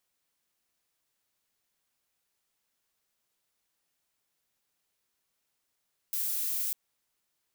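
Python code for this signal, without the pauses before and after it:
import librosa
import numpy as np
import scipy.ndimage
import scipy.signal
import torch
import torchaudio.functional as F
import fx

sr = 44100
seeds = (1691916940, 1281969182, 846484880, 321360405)

y = fx.noise_colour(sr, seeds[0], length_s=0.6, colour='violet', level_db=-31.5)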